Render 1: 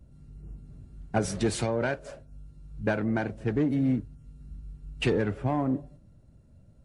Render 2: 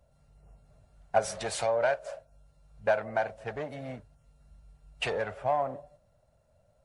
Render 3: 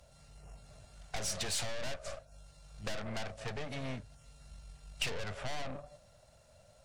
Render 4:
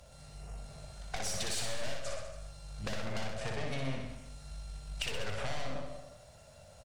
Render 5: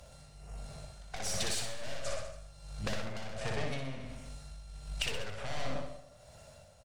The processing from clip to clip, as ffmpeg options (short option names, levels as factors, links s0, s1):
-af "lowshelf=f=440:t=q:w=3:g=-12,volume=0.891"
-filter_complex "[0:a]aeval=exprs='(tanh(79.4*val(0)+0.7)-tanh(0.7))/79.4':c=same,acrossover=split=250[s0][s1];[s1]acompressor=threshold=0.00224:ratio=4[s2];[s0][s2]amix=inputs=2:normalize=0,equalizer=f=5200:w=0.35:g=13,volume=2.37"
-filter_complex "[0:a]acompressor=threshold=0.0112:ratio=6,asplit=2[s0][s1];[s1]aecho=0:1:60|126|198.6|278.5|366.3:0.631|0.398|0.251|0.158|0.1[s2];[s0][s2]amix=inputs=2:normalize=0,volume=1.68"
-af "tremolo=f=1.4:d=0.58,volume=1.33"